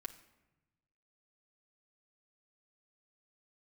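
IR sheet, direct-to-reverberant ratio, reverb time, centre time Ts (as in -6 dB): 1.0 dB, not exponential, 8 ms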